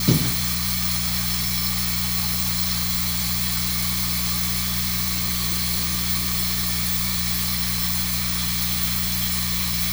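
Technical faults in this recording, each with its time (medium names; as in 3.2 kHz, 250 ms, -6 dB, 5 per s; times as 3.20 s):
hum 60 Hz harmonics 3 -29 dBFS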